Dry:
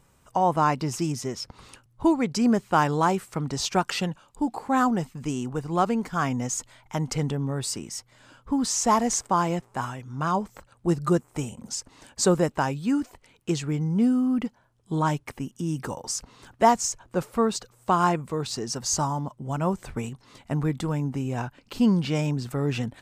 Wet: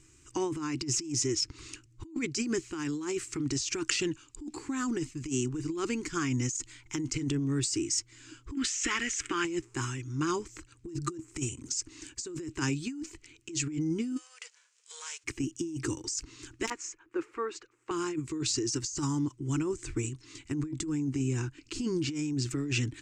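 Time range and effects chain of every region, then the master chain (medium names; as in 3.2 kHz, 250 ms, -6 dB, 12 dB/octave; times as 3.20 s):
8.55–9.45 s: compression, threshold -26 dBFS + high-order bell 2.1 kHz +14.5 dB
14.16–15.23 s: formants flattened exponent 0.6 + compression 4:1, threshold -35 dBFS + brick-wall FIR band-pass 440–10000 Hz
16.67–17.91 s: three-band isolator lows -24 dB, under 370 Hz, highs -23 dB, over 2.3 kHz + integer overflow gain 10 dB
19.62–22.36 s: Chebyshev low-pass 12 kHz, order 8 + dynamic bell 2.8 kHz, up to -6 dB, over -48 dBFS, Q 0.93
whole clip: FFT filter 130 Hz 0 dB, 200 Hz -18 dB, 320 Hz +12 dB, 620 Hz -27 dB, 1.1 kHz -9 dB, 2.5 kHz +4 dB, 3.5 kHz -1 dB, 7.2 kHz +10 dB, 12 kHz -14 dB; compressor with a negative ratio -29 dBFS, ratio -1; trim -3.5 dB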